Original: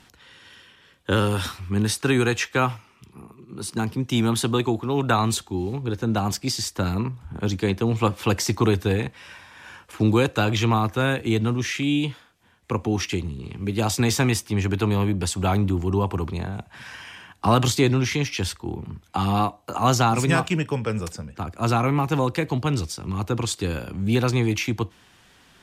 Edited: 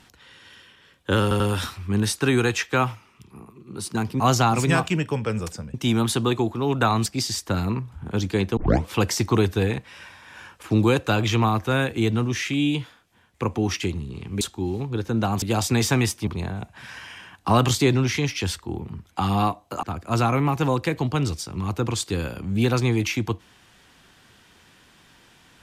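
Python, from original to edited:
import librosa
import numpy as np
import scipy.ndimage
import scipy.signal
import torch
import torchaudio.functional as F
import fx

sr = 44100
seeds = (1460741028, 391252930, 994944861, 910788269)

y = fx.edit(x, sr, fx.stutter(start_s=1.22, slice_s=0.09, count=3),
    fx.move(start_s=5.34, length_s=1.01, to_s=13.7),
    fx.tape_start(start_s=7.86, length_s=0.3),
    fx.cut(start_s=14.55, length_s=1.69),
    fx.move(start_s=19.8, length_s=1.54, to_s=4.02), tone=tone)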